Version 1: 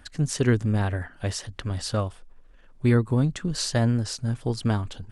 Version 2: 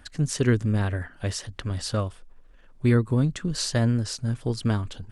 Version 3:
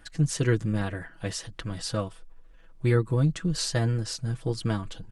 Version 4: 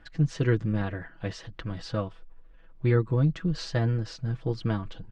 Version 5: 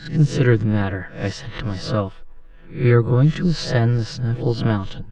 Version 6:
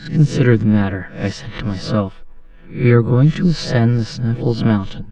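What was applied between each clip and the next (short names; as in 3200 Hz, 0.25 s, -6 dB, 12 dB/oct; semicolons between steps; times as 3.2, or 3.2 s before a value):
dynamic EQ 790 Hz, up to -5 dB, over -48 dBFS, Q 3
comb 6.1 ms, depth 68%; gain -3 dB
air absorption 190 m
spectral swells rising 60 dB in 0.37 s; gain +8 dB
small resonant body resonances 220/2300 Hz, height 7 dB; gain +2 dB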